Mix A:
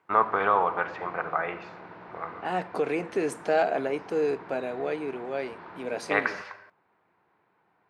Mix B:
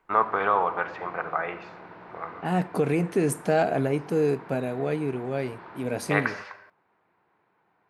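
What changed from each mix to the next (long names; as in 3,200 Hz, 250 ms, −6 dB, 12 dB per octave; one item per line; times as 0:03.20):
second voice: remove band-pass filter 390–6,000 Hz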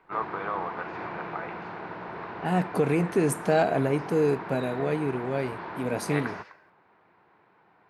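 first voice −9.0 dB
background +7.5 dB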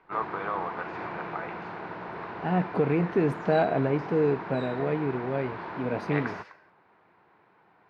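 second voice: add high-frequency loss of the air 290 metres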